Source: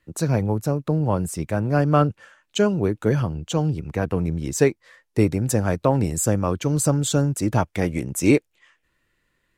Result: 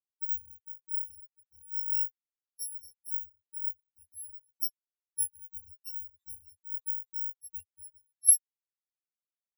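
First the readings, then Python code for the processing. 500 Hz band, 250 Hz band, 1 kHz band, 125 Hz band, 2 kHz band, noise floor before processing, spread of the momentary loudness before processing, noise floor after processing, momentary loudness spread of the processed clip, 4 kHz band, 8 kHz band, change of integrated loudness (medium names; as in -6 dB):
under -40 dB, under -40 dB, under -40 dB, under -40 dB, under -35 dB, -72 dBFS, 6 LU, under -85 dBFS, 20 LU, -14.0 dB, -1.0 dB, -8.5 dB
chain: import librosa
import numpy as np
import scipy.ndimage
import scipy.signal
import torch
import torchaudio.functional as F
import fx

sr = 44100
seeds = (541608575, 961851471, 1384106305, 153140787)

y = fx.bit_reversed(x, sr, seeds[0], block=256)
y = fx.spectral_expand(y, sr, expansion=4.0)
y = F.gain(torch.from_numpy(y), -7.0).numpy()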